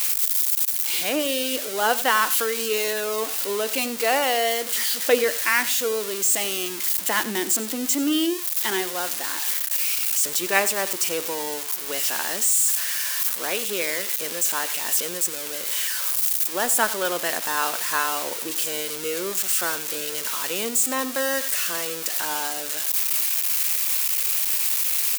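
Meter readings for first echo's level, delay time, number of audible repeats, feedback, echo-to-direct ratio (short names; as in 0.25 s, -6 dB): -16.5 dB, 92 ms, 1, no steady repeat, -16.5 dB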